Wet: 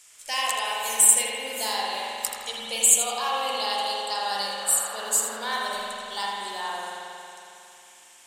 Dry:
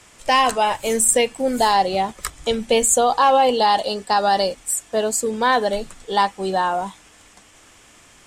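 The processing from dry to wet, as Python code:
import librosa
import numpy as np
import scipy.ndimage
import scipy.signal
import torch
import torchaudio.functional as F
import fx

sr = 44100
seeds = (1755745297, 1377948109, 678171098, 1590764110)

p1 = scipy.signal.lfilter([1.0, -0.97], [1.0], x)
p2 = p1 + fx.echo_feedback(p1, sr, ms=81, feedback_pct=28, wet_db=-9, dry=0)
p3 = fx.dmg_noise_band(p2, sr, seeds[0], low_hz=540.0, high_hz=1600.0, level_db=-43.0, at=(4.6, 5.38), fade=0.02)
y = fx.rev_spring(p3, sr, rt60_s=2.9, pass_ms=(45,), chirp_ms=50, drr_db=-4.5)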